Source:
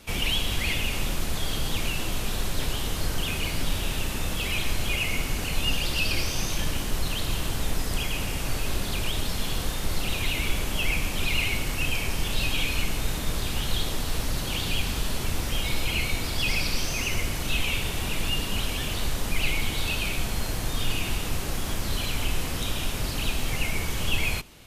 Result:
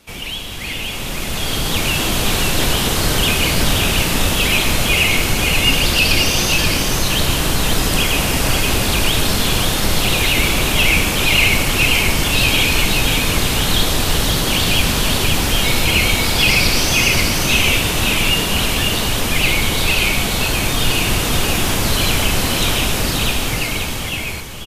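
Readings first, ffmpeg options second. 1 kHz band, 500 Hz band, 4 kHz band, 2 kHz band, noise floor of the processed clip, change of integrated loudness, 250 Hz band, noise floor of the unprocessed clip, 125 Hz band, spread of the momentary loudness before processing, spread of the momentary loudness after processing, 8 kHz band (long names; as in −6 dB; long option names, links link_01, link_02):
+13.5 dB, +13.5 dB, +13.5 dB, +13.5 dB, −24 dBFS, +13.0 dB, +13.0 dB, −31 dBFS, +10.5 dB, 4 LU, 5 LU, +13.5 dB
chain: -af "lowshelf=frequency=74:gain=-8,dynaudnorm=framelen=250:gausssize=11:maxgain=14.5dB,aecho=1:1:532:0.631"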